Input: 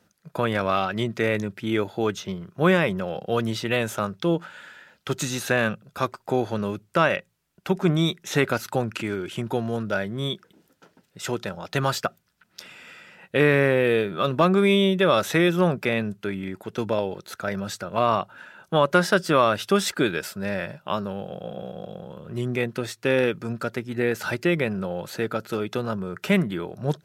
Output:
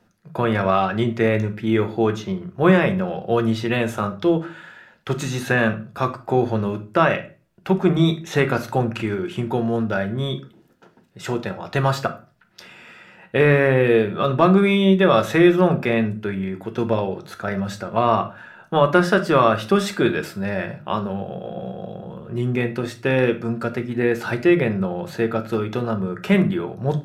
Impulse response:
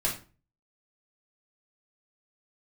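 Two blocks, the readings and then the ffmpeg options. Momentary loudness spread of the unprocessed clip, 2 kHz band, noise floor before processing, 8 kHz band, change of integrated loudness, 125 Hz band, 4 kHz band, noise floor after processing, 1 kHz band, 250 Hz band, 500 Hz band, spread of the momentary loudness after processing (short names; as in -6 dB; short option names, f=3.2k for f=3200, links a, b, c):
13 LU, +2.0 dB, -67 dBFS, -4.0 dB, +4.0 dB, +5.5 dB, -1.0 dB, -56 dBFS, +4.0 dB, +5.5 dB, +3.5 dB, 12 LU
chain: -filter_complex "[0:a]highshelf=f=3.1k:g=-9.5,asplit=2[a][b];[1:a]atrim=start_sample=2205[c];[b][c]afir=irnorm=-1:irlink=0,volume=-10.5dB[d];[a][d]amix=inputs=2:normalize=0,volume=1.5dB"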